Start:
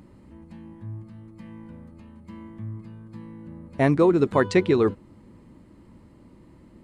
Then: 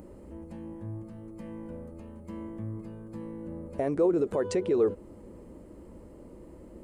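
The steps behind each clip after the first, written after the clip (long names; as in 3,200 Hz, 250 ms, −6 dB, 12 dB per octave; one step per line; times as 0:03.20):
downward compressor, threshold −23 dBFS, peak gain reduction 9.5 dB
brickwall limiter −24 dBFS, peak gain reduction 10 dB
octave-band graphic EQ 125/250/500/1,000/2,000/4,000 Hz −11/−5/+7/−6/−7/−11 dB
level +6.5 dB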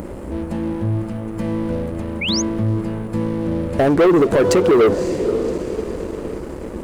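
feedback delay with all-pass diffusion 558 ms, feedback 50%, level −13 dB
leveller curve on the samples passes 3
sound drawn into the spectrogram rise, 0:02.21–0:02.42, 2,100–6,900 Hz −29 dBFS
level +7 dB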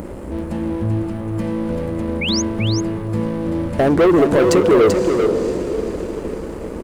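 single-tap delay 387 ms −6 dB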